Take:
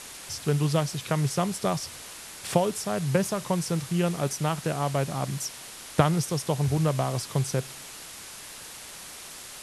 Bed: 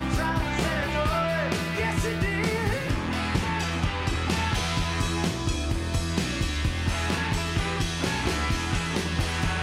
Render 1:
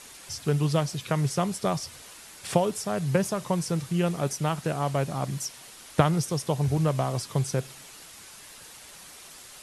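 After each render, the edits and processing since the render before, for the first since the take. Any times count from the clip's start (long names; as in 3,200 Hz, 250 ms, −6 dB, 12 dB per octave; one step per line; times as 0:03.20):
broadband denoise 6 dB, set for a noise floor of −43 dBFS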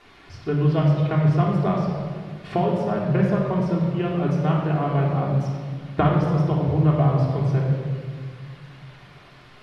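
high-frequency loss of the air 350 metres
rectangular room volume 2,300 cubic metres, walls mixed, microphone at 3.3 metres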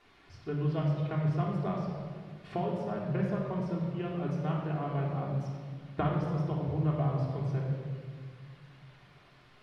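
level −11 dB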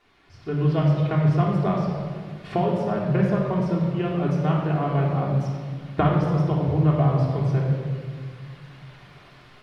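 automatic gain control gain up to 10 dB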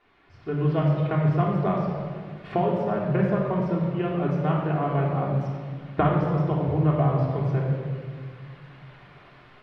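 bass and treble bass −3 dB, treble −14 dB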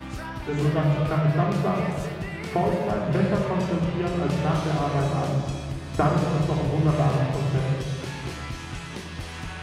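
mix in bed −8.5 dB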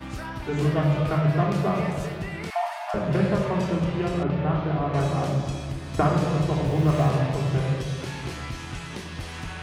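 0:02.50–0:02.94: linear-phase brick-wall high-pass 610 Hz
0:04.23–0:04.94: high-frequency loss of the air 370 metres
0:06.66–0:07.09: mu-law and A-law mismatch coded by mu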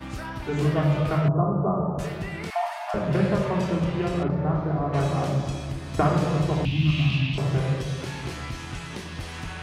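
0:01.28–0:01.99: Butterworth low-pass 1,300 Hz 72 dB per octave
0:04.28–0:04.93: parametric band 3,000 Hz −13.5 dB 1.1 octaves
0:06.65–0:07.38: drawn EQ curve 280 Hz 0 dB, 460 Hz −25 dB, 940 Hz −13 dB, 1,800 Hz −8 dB, 2,700 Hz +15 dB, 8,100 Hz −11 dB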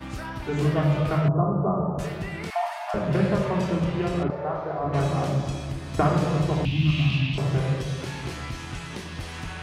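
0:04.30–0:04.84: low shelf with overshoot 350 Hz −11 dB, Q 1.5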